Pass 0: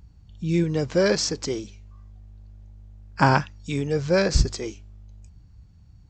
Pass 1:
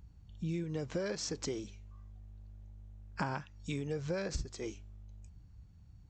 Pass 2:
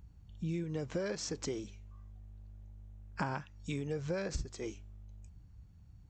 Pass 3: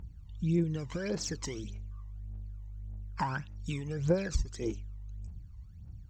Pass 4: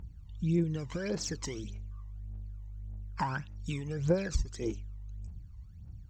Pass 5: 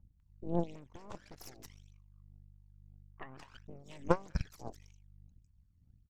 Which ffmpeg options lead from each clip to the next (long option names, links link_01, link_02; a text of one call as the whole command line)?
ffmpeg -i in.wav -af "equalizer=frequency=4800:width=4.5:gain=-4.5,acompressor=threshold=-27dB:ratio=10,volume=-6dB" out.wav
ffmpeg -i in.wav -af "equalizer=frequency=4500:width_type=o:width=0.77:gain=-2.5" out.wav
ffmpeg -i in.wav -af "aphaser=in_gain=1:out_gain=1:delay=1.1:decay=0.7:speed=1.7:type=triangular" out.wav
ffmpeg -i in.wav -af anull out.wav
ffmpeg -i in.wav -filter_complex "[0:a]acrossover=split=1100[link_01][link_02];[link_02]adelay=200[link_03];[link_01][link_03]amix=inputs=2:normalize=0,aeval=exprs='0.168*(cos(1*acos(clip(val(0)/0.168,-1,1)))-cos(1*PI/2))+0.0596*(cos(3*acos(clip(val(0)/0.168,-1,1)))-cos(3*PI/2))+0.00668*(cos(4*acos(clip(val(0)/0.168,-1,1)))-cos(4*PI/2))+0.00211*(cos(8*acos(clip(val(0)/0.168,-1,1)))-cos(8*PI/2))':channel_layout=same,volume=5dB" out.wav